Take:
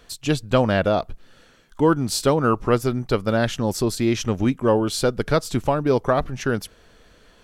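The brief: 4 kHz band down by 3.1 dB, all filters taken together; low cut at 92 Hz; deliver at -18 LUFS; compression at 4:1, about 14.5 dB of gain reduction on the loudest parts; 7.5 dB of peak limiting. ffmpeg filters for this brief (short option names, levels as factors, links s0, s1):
-af "highpass=92,equalizer=f=4000:t=o:g=-4,acompressor=threshold=0.0282:ratio=4,volume=7.94,alimiter=limit=0.422:level=0:latency=1"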